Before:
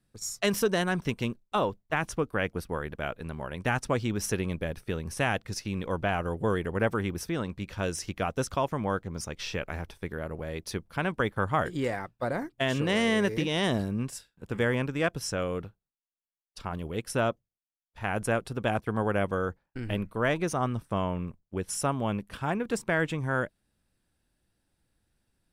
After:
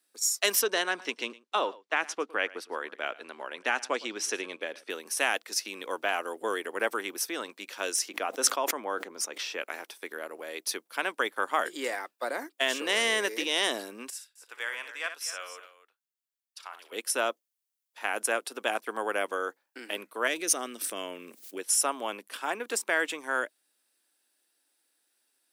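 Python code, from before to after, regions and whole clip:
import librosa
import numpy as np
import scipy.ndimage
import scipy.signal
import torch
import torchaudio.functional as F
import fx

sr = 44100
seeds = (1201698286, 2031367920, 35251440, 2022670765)

y = fx.chain(x, sr, fx.lowpass(hz=5500.0, slope=12),
    fx.echo_single(ms=111, db=-20.5), at=(0.61, 4.9))
y = fx.chain(y, sr, fx.highpass(hz=94.0, slope=12),
    fx.high_shelf(hz=2400.0, db=-9.5),
    fx.sustainer(db_per_s=38.0), at=(8.08, 9.6))
y = fx.chain(y, sr, fx.bessel_highpass(hz=1400.0, order=2),
    fx.high_shelf(hz=2900.0, db=-9.0),
    fx.echo_multitap(ms=(60, 253), db=(-9.5, -13.0)), at=(14.1, 16.92))
y = fx.chain(y, sr, fx.peak_eq(hz=940.0, db=-13.0, octaves=1.3),
    fx.env_flatten(amount_pct=70), at=(20.27, 21.59))
y = scipy.signal.sosfilt(scipy.signal.butter(6, 270.0, 'highpass', fs=sr, output='sos'), y)
y = fx.tilt_eq(y, sr, slope=3.0)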